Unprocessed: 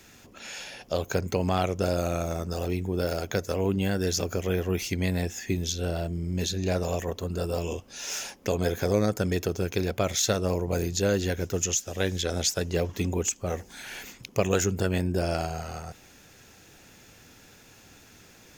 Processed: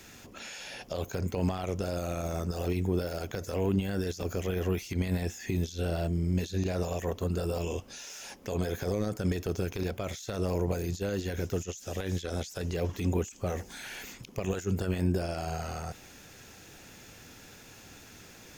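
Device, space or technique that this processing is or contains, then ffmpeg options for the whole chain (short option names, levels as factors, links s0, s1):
de-esser from a sidechain: -filter_complex "[0:a]asplit=2[s0][s1];[s1]highpass=f=4400:p=1,apad=whole_len=819362[s2];[s0][s2]sidechaincompress=threshold=0.00562:ratio=12:attack=1.8:release=31,volume=1.26"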